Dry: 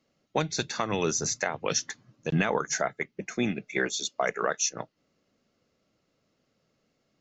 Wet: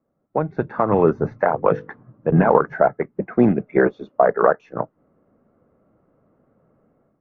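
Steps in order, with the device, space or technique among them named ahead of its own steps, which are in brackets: 1.31–2.54 notches 50/100/150/200/250/300/350/400/450/500 Hz; 4.18–4.6 elliptic low-pass 1900 Hz, stop band 40 dB; dynamic EQ 540 Hz, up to +3 dB, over -36 dBFS, Q 1.2; action camera in a waterproof case (LPF 1300 Hz 24 dB/oct; AGC gain up to 12.5 dB; gain +1 dB; AAC 48 kbps 44100 Hz)

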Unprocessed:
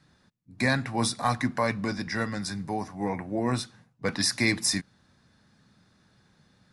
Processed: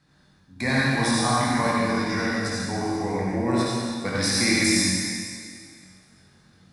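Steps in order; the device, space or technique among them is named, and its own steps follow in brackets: tunnel (flutter echo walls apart 3.7 m, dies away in 0.21 s; reverb RT60 2.1 s, pre-delay 55 ms, DRR -6 dB); gain -2.5 dB

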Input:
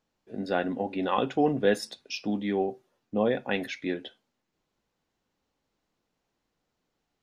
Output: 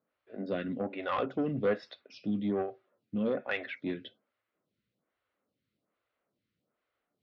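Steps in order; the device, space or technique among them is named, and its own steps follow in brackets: vibe pedal into a guitar amplifier (photocell phaser 1.2 Hz; tube stage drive 22 dB, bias 0.2; speaker cabinet 75–4200 Hz, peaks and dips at 110 Hz +7 dB, 200 Hz +3 dB, 590 Hz +5 dB, 860 Hz -7 dB, 1300 Hz +6 dB, 2100 Hz +4 dB); gain -1.5 dB

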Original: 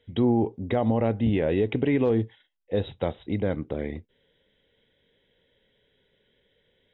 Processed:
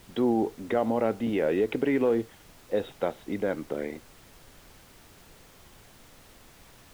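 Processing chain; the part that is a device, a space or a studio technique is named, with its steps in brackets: horn gramophone (BPF 260–3100 Hz; bell 1400 Hz +6 dB 0.27 oct; wow and flutter; pink noise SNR 23 dB)

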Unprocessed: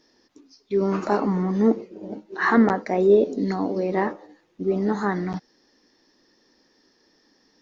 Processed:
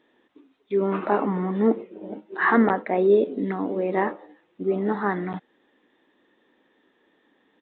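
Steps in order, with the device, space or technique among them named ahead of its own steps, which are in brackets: 3.06–3.72 dynamic EQ 740 Hz, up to -6 dB, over -33 dBFS, Q 1.5; Bluetooth headset (HPF 240 Hz 6 dB/oct; downsampling 8000 Hz; gain +1 dB; SBC 64 kbps 16000 Hz)

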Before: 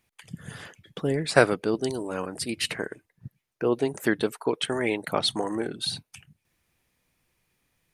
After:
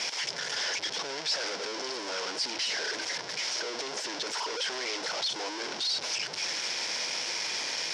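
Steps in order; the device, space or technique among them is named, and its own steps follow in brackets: home computer beeper (infinite clipping; speaker cabinet 700–5600 Hz, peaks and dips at 750 Hz -4 dB, 1200 Hz -10 dB, 1800 Hz -5 dB, 2600 Hz -5 dB, 3800 Hz -3 dB, 5400 Hz +10 dB); gain +2 dB

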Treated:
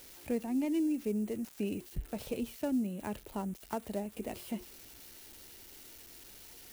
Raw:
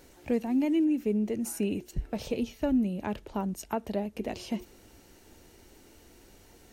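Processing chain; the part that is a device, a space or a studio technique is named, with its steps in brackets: budget class-D amplifier (switching dead time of 0.083 ms; switching spikes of -32 dBFS); 2.57–3.01 HPF 130 Hz 12 dB/oct; gain -5.5 dB

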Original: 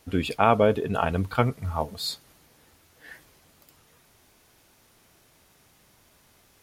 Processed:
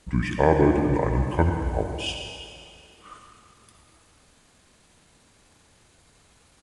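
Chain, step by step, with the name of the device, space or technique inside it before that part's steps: monster voice (pitch shift -6.5 st; low shelf 140 Hz +3.5 dB; reverb RT60 2.4 s, pre-delay 60 ms, DRR 3.5 dB)

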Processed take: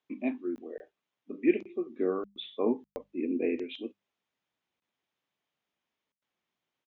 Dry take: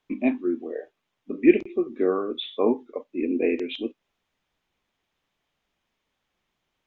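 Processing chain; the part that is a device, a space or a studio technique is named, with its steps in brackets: call with lost packets (HPF 120 Hz 12 dB/oct; downsampling 16000 Hz; packet loss packets of 20 ms bursts); notches 50/100/150/200 Hz; 1.99–3.64 low shelf 170 Hz +12 dB; gain -8.5 dB

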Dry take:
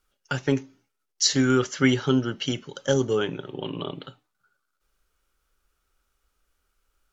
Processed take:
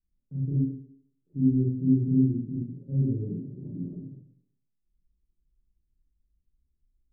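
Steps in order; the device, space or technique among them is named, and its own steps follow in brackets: next room (LPF 250 Hz 24 dB/oct; reverb RT60 0.70 s, pre-delay 31 ms, DRR -10 dB); gain -8 dB

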